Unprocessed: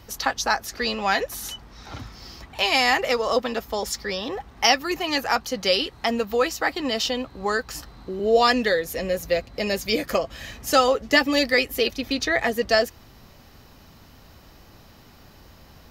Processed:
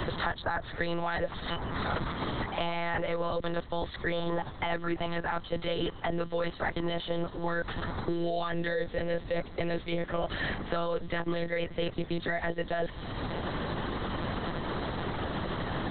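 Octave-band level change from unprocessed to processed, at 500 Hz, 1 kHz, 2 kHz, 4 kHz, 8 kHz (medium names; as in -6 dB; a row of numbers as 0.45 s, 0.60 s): -8.5 dB, -9.0 dB, -10.0 dB, -13.5 dB, under -40 dB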